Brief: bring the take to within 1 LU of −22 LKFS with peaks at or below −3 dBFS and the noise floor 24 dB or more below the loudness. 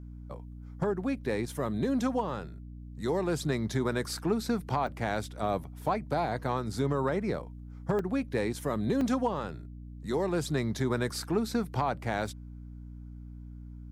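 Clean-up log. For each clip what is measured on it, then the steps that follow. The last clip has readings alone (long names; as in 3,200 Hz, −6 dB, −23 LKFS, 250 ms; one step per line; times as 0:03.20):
number of dropouts 4; longest dropout 2.7 ms; mains hum 60 Hz; hum harmonics up to 300 Hz; level of the hum −41 dBFS; integrated loudness −31.5 LKFS; sample peak −17.0 dBFS; target loudness −22.0 LKFS
→ repair the gap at 0:04.87/0:07.99/0:09.01/0:12.27, 2.7 ms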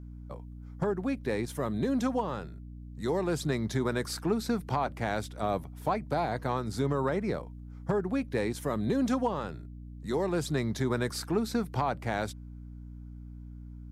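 number of dropouts 0; mains hum 60 Hz; hum harmonics up to 300 Hz; level of the hum −41 dBFS
→ mains-hum notches 60/120/180/240/300 Hz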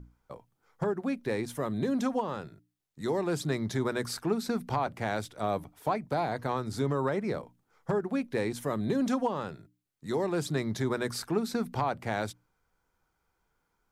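mains hum none found; integrated loudness −32.0 LKFS; sample peak −17.5 dBFS; target loudness −22.0 LKFS
→ level +10 dB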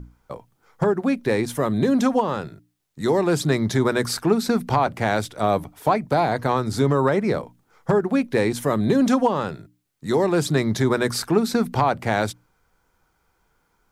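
integrated loudness −22.0 LKFS; sample peak −7.5 dBFS; background noise floor −68 dBFS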